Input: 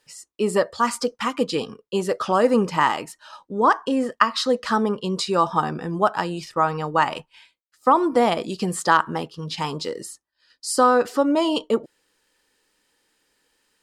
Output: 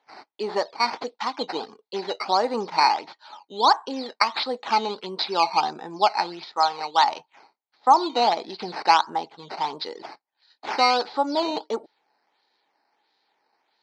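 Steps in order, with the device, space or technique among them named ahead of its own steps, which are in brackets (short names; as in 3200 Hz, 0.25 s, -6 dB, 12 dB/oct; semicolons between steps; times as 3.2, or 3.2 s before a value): 6.56–7.04 tilt +3 dB/oct; circuit-bent sampling toy (decimation with a swept rate 9×, swing 100% 1.5 Hz; speaker cabinet 430–4600 Hz, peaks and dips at 520 Hz -7 dB, 830 Hz +9 dB, 1200 Hz -5 dB, 1700 Hz -5 dB, 2800 Hz -7 dB, 4300 Hz +9 dB); gain -1 dB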